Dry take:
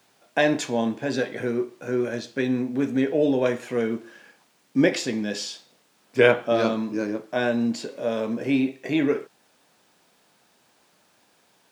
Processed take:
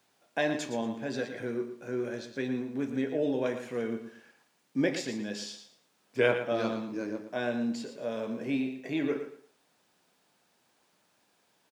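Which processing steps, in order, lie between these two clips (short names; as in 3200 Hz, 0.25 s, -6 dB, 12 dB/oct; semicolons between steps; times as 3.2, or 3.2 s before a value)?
feedback echo 0.115 s, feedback 24%, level -9.5 dB; gain -8.5 dB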